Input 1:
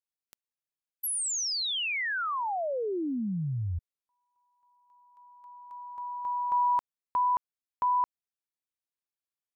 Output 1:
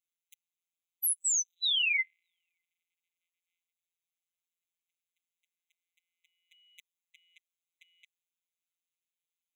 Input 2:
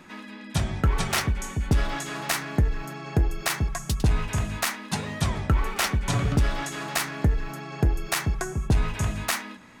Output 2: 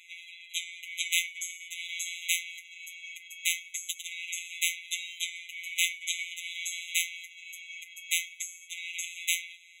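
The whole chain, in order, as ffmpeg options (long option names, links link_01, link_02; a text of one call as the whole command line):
ffmpeg -i in.wav -af "acontrast=74,afftfilt=real='hypot(re,im)*cos(PI*b)':imag='0':win_size=1024:overlap=0.75,afftfilt=real='re*eq(mod(floor(b*sr/1024/2000),2),1)':imag='im*eq(mod(floor(b*sr/1024/2000),2),1)':win_size=1024:overlap=0.75" out.wav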